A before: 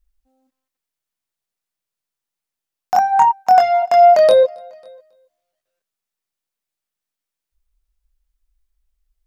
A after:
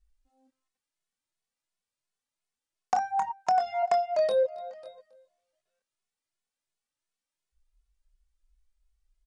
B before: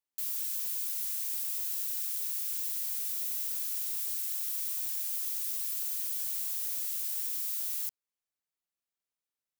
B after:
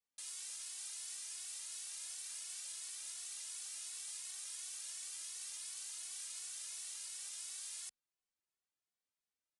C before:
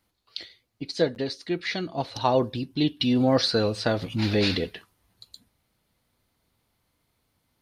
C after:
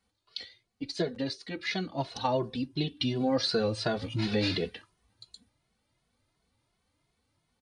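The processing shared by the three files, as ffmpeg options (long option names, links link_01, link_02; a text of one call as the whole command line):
ffmpeg -i in.wav -filter_complex "[0:a]acompressor=threshold=-20dB:ratio=16,aresample=22050,aresample=44100,asplit=2[link_01][link_02];[link_02]adelay=2.3,afreqshift=2.8[link_03];[link_01][link_03]amix=inputs=2:normalize=1" out.wav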